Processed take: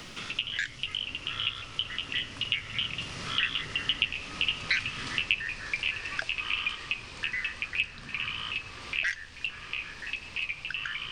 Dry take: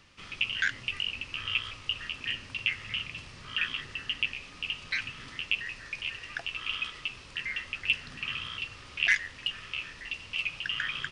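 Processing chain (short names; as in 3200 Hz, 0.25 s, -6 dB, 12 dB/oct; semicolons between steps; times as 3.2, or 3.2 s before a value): Doppler pass-by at 4.67, 19 m/s, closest 21 m; added noise brown -69 dBFS; three-band squash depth 70%; gain +8 dB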